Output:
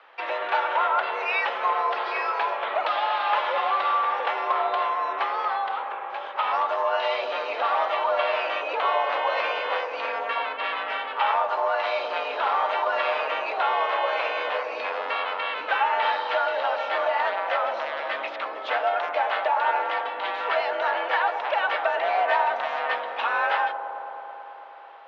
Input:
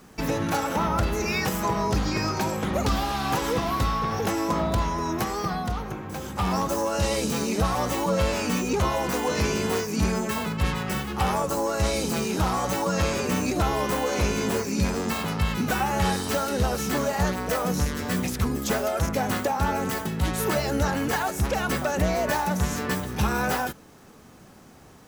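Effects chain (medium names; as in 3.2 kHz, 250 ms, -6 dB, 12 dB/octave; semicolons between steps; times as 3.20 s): on a send: feedback echo behind a low-pass 109 ms, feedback 84%, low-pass 800 Hz, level -7.5 dB; on the sum: mistuned SSB +55 Hz 570–3400 Hz; trim +4 dB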